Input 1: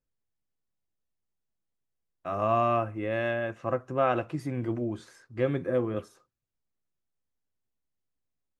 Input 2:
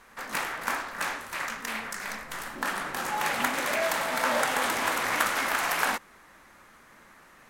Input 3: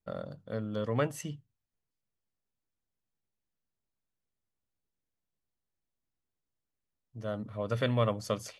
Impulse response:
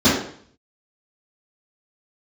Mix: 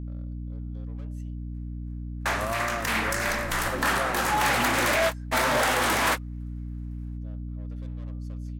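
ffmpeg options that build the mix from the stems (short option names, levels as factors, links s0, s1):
-filter_complex "[0:a]volume=0.668,asplit=2[s0][s1];[1:a]dynaudnorm=f=220:g=11:m=3.76,asoftclip=type=tanh:threshold=0.126,adelay=1200,volume=1.33[s2];[2:a]bandreject=f=198.3:t=h:w=4,bandreject=f=396.6:t=h:w=4,bandreject=f=594.9:t=h:w=4,bandreject=f=793.2:t=h:w=4,bandreject=f=991.5:t=h:w=4,bandreject=f=1189.8:t=h:w=4,bandreject=f=1388.1:t=h:w=4,bandreject=f=1586.4:t=h:w=4,aeval=exprs='(tanh(44.7*val(0)+0.45)-tanh(0.45))/44.7':c=same,volume=0.158[s3];[s1]apad=whole_len=383669[s4];[s2][s4]sidechaingate=range=0.00282:threshold=0.00282:ratio=16:detection=peak[s5];[s0][s5][s3]amix=inputs=3:normalize=0,aeval=exprs='val(0)+0.0224*(sin(2*PI*60*n/s)+sin(2*PI*2*60*n/s)/2+sin(2*PI*3*60*n/s)/3+sin(2*PI*4*60*n/s)/4+sin(2*PI*5*60*n/s)/5)':c=same,alimiter=limit=0.15:level=0:latency=1:release=495"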